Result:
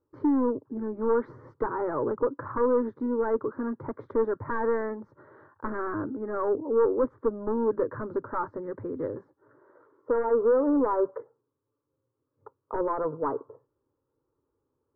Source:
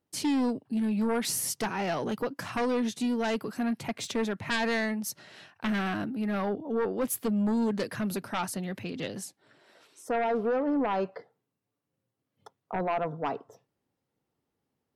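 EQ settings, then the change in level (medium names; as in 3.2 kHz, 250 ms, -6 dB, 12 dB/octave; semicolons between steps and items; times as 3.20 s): low-pass 1.2 kHz 24 dB/octave; static phaser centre 720 Hz, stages 6; +7.5 dB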